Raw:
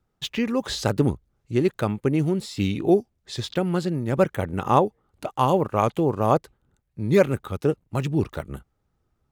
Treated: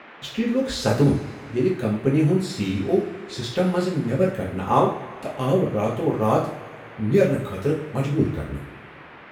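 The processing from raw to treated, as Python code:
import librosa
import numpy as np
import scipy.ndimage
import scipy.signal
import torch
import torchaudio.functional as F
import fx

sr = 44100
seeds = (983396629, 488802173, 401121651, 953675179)

y = fx.rotary(x, sr, hz=0.75)
y = fx.rev_double_slope(y, sr, seeds[0], early_s=0.43, late_s=2.3, knee_db=-18, drr_db=-4.5)
y = fx.dmg_noise_band(y, sr, seeds[1], low_hz=180.0, high_hz=2300.0, level_db=-42.0)
y = y * 10.0 ** (-2.5 / 20.0)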